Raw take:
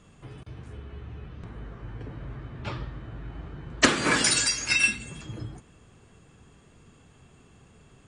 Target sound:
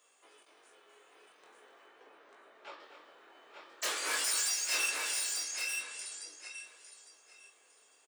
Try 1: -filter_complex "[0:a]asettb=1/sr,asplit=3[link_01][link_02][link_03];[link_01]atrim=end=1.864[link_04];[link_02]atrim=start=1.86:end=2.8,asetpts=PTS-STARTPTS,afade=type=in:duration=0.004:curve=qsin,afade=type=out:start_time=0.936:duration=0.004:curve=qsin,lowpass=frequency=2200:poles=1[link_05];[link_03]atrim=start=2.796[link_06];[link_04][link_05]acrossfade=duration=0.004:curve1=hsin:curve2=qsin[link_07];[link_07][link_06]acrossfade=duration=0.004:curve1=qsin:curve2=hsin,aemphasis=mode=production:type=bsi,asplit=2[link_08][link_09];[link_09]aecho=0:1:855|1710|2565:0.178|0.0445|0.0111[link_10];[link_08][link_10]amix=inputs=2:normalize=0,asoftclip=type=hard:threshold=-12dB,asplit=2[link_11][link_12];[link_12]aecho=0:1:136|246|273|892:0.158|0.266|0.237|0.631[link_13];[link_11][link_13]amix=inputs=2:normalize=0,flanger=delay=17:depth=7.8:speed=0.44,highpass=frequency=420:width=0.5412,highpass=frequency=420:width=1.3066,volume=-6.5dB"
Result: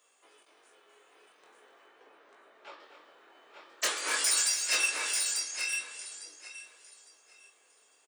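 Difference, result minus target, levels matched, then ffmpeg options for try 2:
hard clipping: distortion −7 dB
-filter_complex "[0:a]asettb=1/sr,asplit=3[link_01][link_02][link_03];[link_01]atrim=end=1.864[link_04];[link_02]atrim=start=1.86:end=2.8,asetpts=PTS-STARTPTS,afade=type=in:duration=0.004:curve=qsin,afade=type=out:start_time=0.936:duration=0.004:curve=qsin,lowpass=frequency=2200:poles=1[link_05];[link_03]atrim=start=2.796[link_06];[link_04][link_05]acrossfade=duration=0.004:curve1=hsin:curve2=qsin[link_07];[link_07][link_06]acrossfade=duration=0.004:curve1=qsin:curve2=hsin,aemphasis=mode=production:type=bsi,asplit=2[link_08][link_09];[link_09]aecho=0:1:855|1710|2565:0.178|0.0445|0.0111[link_10];[link_08][link_10]amix=inputs=2:normalize=0,asoftclip=type=hard:threshold=-20.5dB,asplit=2[link_11][link_12];[link_12]aecho=0:1:136|246|273|892:0.158|0.266|0.237|0.631[link_13];[link_11][link_13]amix=inputs=2:normalize=0,flanger=delay=17:depth=7.8:speed=0.44,highpass=frequency=420:width=0.5412,highpass=frequency=420:width=1.3066,volume=-6.5dB"

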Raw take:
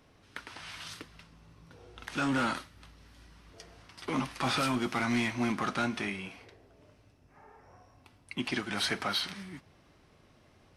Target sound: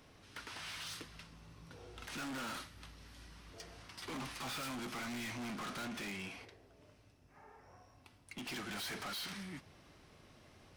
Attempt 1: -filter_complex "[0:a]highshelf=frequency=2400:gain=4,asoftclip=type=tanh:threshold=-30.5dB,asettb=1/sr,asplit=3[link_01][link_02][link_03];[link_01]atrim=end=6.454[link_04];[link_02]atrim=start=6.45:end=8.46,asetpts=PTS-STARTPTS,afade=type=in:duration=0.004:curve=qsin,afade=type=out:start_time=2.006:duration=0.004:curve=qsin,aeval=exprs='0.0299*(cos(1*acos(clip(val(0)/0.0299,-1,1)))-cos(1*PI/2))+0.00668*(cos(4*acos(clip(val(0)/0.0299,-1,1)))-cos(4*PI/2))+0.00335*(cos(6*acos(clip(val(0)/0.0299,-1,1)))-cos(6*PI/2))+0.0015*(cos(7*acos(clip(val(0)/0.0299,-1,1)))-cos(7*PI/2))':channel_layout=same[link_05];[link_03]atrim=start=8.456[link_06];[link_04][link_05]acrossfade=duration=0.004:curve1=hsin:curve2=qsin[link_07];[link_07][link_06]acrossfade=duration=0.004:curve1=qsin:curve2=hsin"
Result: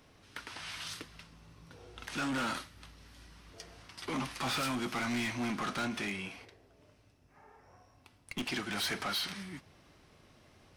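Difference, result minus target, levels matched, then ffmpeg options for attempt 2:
soft clipping: distortion −7 dB
-filter_complex "[0:a]highshelf=frequency=2400:gain=4,asoftclip=type=tanh:threshold=-41dB,asettb=1/sr,asplit=3[link_01][link_02][link_03];[link_01]atrim=end=6.454[link_04];[link_02]atrim=start=6.45:end=8.46,asetpts=PTS-STARTPTS,afade=type=in:duration=0.004:curve=qsin,afade=type=out:start_time=2.006:duration=0.004:curve=qsin,aeval=exprs='0.0299*(cos(1*acos(clip(val(0)/0.0299,-1,1)))-cos(1*PI/2))+0.00668*(cos(4*acos(clip(val(0)/0.0299,-1,1)))-cos(4*PI/2))+0.00335*(cos(6*acos(clip(val(0)/0.0299,-1,1)))-cos(6*PI/2))+0.0015*(cos(7*acos(clip(val(0)/0.0299,-1,1)))-cos(7*PI/2))':channel_layout=same[link_05];[link_03]atrim=start=8.456[link_06];[link_04][link_05]acrossfade=duration=0.004:curve1=hsin:curve2=qsin[link_07];[link_07][link_06]acrossfade=duration=0.004:curve1=qsin:curve2=hsin"

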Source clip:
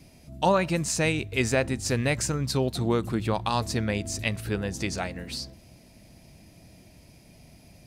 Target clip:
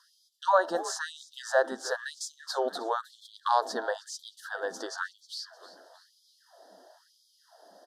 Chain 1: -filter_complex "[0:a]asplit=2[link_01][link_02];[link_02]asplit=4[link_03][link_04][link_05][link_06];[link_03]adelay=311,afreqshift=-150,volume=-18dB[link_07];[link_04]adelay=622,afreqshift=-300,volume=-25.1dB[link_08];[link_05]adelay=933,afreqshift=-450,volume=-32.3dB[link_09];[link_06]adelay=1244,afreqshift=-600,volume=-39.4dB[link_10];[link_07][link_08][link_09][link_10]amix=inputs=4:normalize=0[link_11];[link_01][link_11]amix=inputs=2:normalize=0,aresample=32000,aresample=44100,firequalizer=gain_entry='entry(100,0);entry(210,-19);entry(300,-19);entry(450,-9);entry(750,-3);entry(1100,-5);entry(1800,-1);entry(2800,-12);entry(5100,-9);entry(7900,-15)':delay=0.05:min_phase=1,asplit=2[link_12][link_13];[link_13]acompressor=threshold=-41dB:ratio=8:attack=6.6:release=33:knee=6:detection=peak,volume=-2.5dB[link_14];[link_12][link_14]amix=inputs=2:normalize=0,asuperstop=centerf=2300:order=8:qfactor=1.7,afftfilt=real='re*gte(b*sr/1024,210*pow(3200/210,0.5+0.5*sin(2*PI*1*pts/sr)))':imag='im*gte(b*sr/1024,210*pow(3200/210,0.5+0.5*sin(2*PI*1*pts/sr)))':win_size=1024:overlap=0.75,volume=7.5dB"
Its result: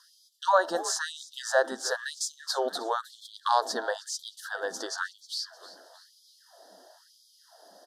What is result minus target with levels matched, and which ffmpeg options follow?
4,000 Hz band +3.5 dB
-filter_complex "[0:a]asplit=2[link_01][link_02];[link_02]asplit=4[link_03][link_04][link_05][link_06];[link_03]adelay=311,afreqshift=-150,volume=-18dB[link_07];[link_04]adelay=622,afreqshift=-300,volume=-25.1dB[link_08];[link_05]adelay=933,afreqshift=-450,volume=-32.3dB[link_09];[link_06]adelay=1244,afreqshift=-600,volume=-39.4dB[link_10];[link_07][link_08][link_09][link_10]amix=inputs=4:normalize=0[link_11];[link_01][link_11]amix=inputs=2:normalize=0,aresample=32000,aresample=44100,firequalizer=gain_entry='entry(100,0);entry(210,-19);entry(300,-19);entry(450,-9);entry(750,-3);entry(1100,-5);entry(1800,-1);entry(2800,-12);entry(5100,-9);entry(7900,-15)':delay=0.05:min_phase=1,asplit=2[link_12][link_13];[link_13]acompressor=threshold=-41dB:ratio=8:attack=6.6:release=33:knee=6:detection=peak,volume=-2.5dB[link_14];[link_12][link_14]amix=inputs=2:normalize=0,asuperstop=centerf=2300:order=8:qfactor=1.7,highshelf=frequency=2800:gain=-7,afftfilt=real='re*gte(b*sr/1024,210*pow(3200/210,0.5+0.5*sin(2*PI*1*pts/sr)))':imag='im*gte(b*sr/1024,210*pow(3200/210,0.5+0.5*sin(2*PI*1*pts/sr)))':win_size=1024:overlap=0.75,volume=7.5dB"

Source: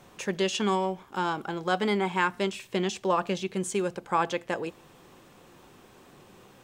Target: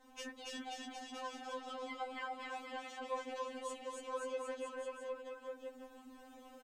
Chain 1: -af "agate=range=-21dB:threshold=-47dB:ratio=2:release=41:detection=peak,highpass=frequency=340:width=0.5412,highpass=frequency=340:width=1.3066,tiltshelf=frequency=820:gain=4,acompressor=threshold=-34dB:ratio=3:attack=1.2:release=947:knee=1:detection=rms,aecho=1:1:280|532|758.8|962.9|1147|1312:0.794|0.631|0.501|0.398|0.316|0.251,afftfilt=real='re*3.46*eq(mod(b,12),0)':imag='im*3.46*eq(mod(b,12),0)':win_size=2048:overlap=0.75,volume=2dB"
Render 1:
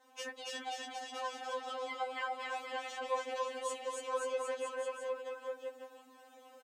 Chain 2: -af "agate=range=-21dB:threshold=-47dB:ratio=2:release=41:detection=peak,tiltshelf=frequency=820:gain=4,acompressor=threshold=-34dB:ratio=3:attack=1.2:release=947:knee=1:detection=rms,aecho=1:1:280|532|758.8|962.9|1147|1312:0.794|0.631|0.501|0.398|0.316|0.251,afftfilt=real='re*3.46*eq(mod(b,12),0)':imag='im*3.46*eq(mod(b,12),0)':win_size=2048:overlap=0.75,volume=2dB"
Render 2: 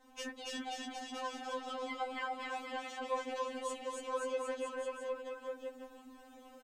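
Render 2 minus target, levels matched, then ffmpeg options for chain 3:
downward compressor: peak gain reduction −4 dB
-af "agate=range=-21dB:threshold=-47dB:ratio=2:release=41:detection=peak,tiltshelf=frequency=820:gain=4,acompressor=threshold=-40dB:ratio=3:attack=1.2:release=947:knee=1:detection=rms,aecho=1:1:280|532|758.8|962.9|1147|1312:0.794|0.631|0.501|0.398|0.316|0.251,afftfilt=real='re*3.46*eq(mod(b,12),0)':imag='im*3.46*eq(mod(b,12),0)':win_size=2048:overlap=0.75,volume=2dB"

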